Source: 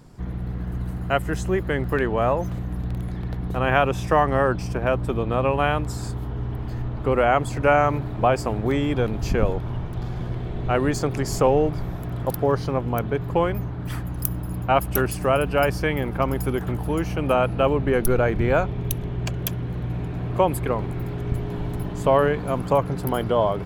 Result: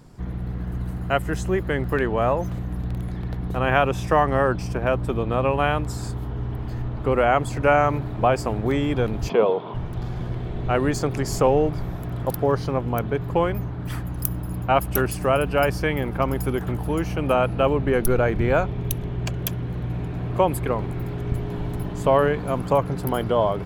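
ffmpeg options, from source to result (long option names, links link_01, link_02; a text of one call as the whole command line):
ffmpeg -i in.wav -filter_complex "[0:a]asplit=3[link_01][link_02][link_03];[link_01]afade=type=out:start_time=9.28:duration=0.02[link_04];[link_02]highpass=frequency=190:width=0.5412,highpass=frequency=190:width=1.3066,equalizer=frequency=270:width_type=q:width=4:gain=-5,equalizer=frequency=450:width_type=q:width=4:gain=8,equalizer=frequency=670:width_type=q:width=4:gain=5,equalizer=frequency=1000:width_type=q:width=4:gain=9,equalizer=frequency=1700:width_type=q:width=4:gain=-6,equalizer=frequency=3400:width_type=q:width=4:gain=8,lowpass=frequency=4100:width=0.5412,lowpass=frequency=4100:width=1.3066,afade=type=in:start_time=9.28:duration=0.02,afade=type=out:start_time=9.73:duration=0.02[link_05];[link_03]afade=type=in:start_time=9.73:duration=0.02[link_06];[link_04][link_05][link_06]amix=inputs=3:normalize=0" out.wav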